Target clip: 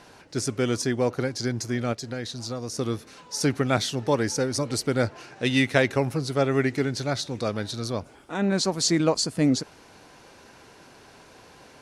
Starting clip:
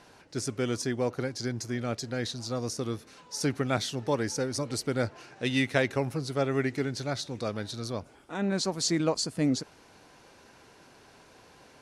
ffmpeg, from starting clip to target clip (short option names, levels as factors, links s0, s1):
-filter_complex "[0:a]asplit=3[s0][s1][s2];[s0]afade=t=out:st=1.92:d=0.02[s3];[s1]acompressor=threshold=0.0158:ratio=2.5,afade=t=in:st=1.92:d=0.02,afade=t=out:st=2.73:d=0.02[s4];[s2]afade=t=in:st=2.73:d=0.02[s5];[s3][s4][s5]amix=inputs=3:normalize=0,volume=1.78"